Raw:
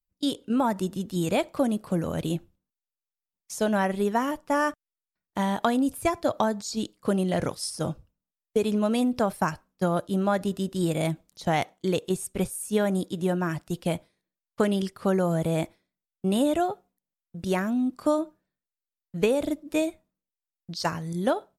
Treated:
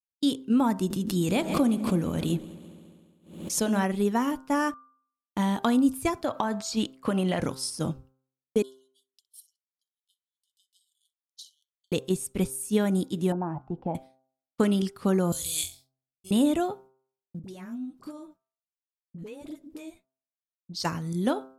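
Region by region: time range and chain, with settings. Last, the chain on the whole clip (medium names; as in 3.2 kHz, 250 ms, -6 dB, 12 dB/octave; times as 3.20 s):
0.90–3.84 s: de-hum 105.4 Hz, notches 20 + multi-head delay 69 ms, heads second and third, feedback 71%, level -21 dB + swell ahead of each attack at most 79 dB/s
6.24–7.41 s: high-order bell 1.3 kHz +8.5 dB 2.8 oct + compression 5:1, threshold -20 dBFS
8.62–11.92 s: compression 16:1, threshold -38 dBFS + brick-wall FIR high-pass 2.9 kHz + flutter echo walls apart 10.7 m, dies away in 0.29 s
13.32–13.95 s: resonant low-pass 820 Hz, resonance Q 7.6 + compression 1.5:1, threshold -35 dBFS
15.32–16.31 s: FFT filter 100 Hz 0 dB, 180 Hz -29 dB, 260 Hz -25 dB, 380 Hz -21 dB, 680 Hz -27 dB, 1.9 kHz -12 dB, 4.2 kHz +15 dB + flutter echo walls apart 3.9 m, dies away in 0.28 s
17.39–20.74 s: compression, threshold -34 dBFS + flange 1.4 Hz, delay 6.1 ms, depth 7 ms, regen +51% + phase dispersion highs, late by 46 ms, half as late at 610 Hz
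whole clip: fifteen-band graphic EQ 250 Hz +4 dB, 630 Hz -6 dB, 1.6 kHz -3 dB; expander -47 dBFS; de-hum 131.6 Hz, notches 12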